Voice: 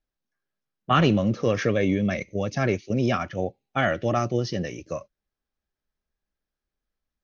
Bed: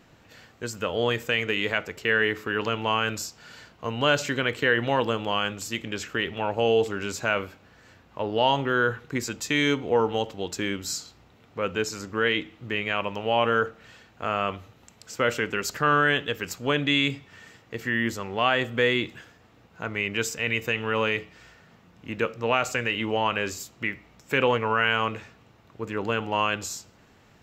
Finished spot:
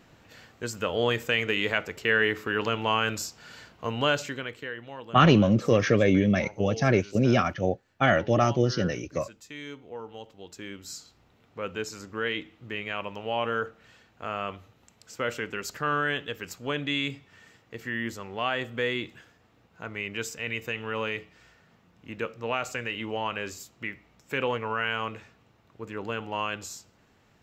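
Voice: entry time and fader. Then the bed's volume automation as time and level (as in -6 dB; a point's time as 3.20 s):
4.25 s, +1.5 dB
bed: 3.98 s -0.5 dB
4.84 s -17.5 dB
10.01 s -17.5 dB
11.28 s -6 dB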